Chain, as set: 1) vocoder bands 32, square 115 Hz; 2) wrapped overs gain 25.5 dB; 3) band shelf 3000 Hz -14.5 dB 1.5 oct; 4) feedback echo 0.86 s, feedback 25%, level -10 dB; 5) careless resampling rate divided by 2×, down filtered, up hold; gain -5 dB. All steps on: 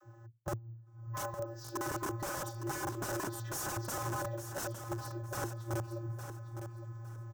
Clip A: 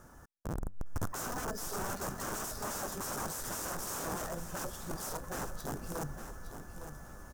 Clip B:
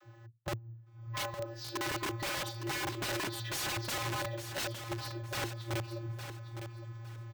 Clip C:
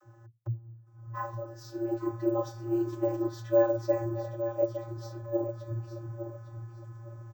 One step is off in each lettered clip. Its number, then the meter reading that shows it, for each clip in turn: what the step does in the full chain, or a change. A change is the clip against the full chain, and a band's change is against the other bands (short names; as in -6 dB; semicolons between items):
1, 125 Hz band -5.0 dB; 3, 4 kHz band +11.0 dB; 2, crest factor change +5.0 dB